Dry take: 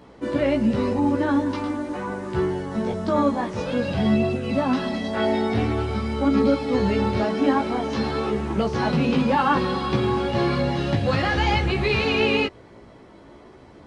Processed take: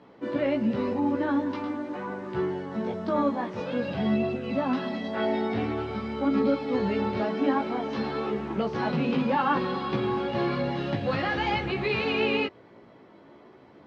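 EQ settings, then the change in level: BPF 140–3900 Hz; -4.5 dB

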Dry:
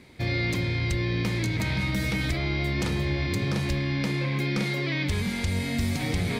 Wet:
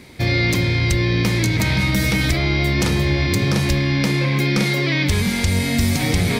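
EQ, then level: bell 5600 Hz +3 dB 0.36 oct; high shelf 9300 Hz +8 dB; +8.5 dB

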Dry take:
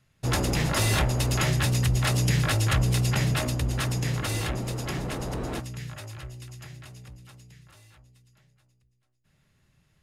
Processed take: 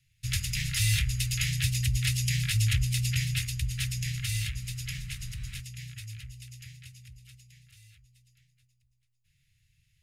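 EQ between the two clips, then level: elliptic band-stop 120–2200 Hz, stop band 60 dB; notches 60/120 Hz; 0.0 dB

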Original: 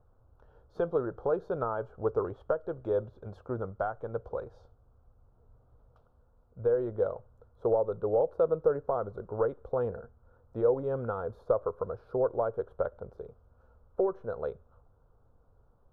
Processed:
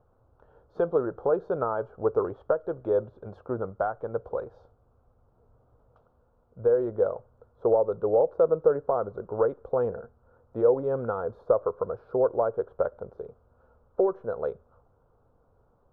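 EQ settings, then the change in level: LPF 1600 Hz 6 dB/oct; low shelf 110 Hz -11.5 dB; +5.5 dB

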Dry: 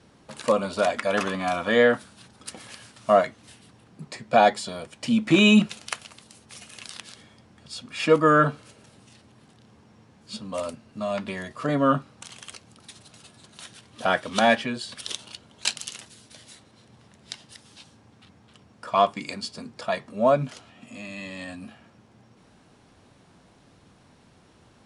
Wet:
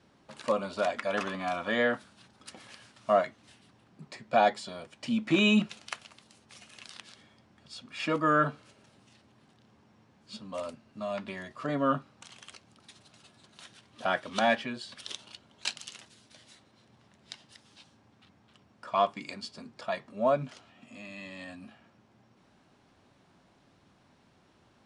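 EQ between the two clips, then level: air absorption 52 m; low shelf 160 Hz -5.5 dB; notch 470 Hz, Q 12; -5.5 dB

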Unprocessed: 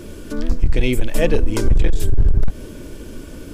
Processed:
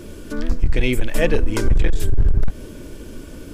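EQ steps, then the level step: dynamic EQ 1700 Hz, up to +5 dB, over -42 dBFS, Q 1.1; -1.5 dB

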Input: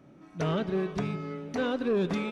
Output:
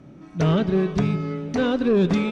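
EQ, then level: air absorption 68 m; low shelf 270 Hz +9 dB; high shelf 4400 Hz +10 dB; +4.5 dB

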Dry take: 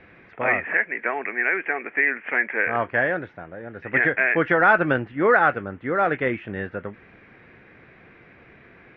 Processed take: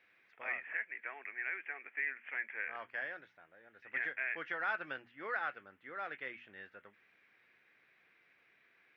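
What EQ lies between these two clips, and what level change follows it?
differentiator; low shelf 280 Hz +7 dB; notches 60/120/180/240 Hz; -5.0 dB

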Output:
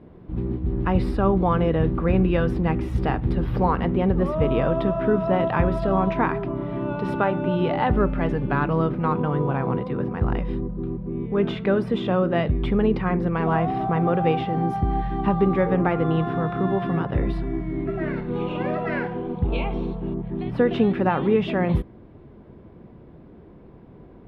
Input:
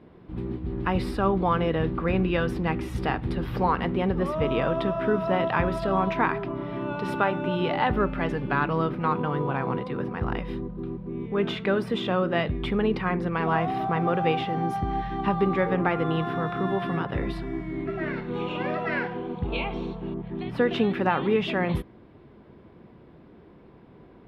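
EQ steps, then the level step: tilt -2 dB/oct; bell 610 Hz +2 dB; 0.0 dB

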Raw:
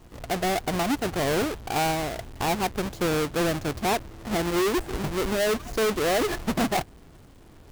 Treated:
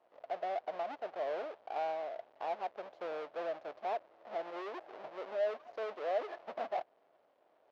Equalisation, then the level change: band-pass 610 Hz, Q 3.7; air absorption 270 m; differentiator; +16.0 dB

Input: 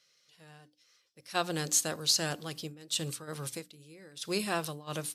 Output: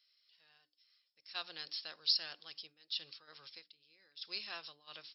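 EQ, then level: brick-wall FIR low-pass 5500 Hz; differentiator; +1.0 dB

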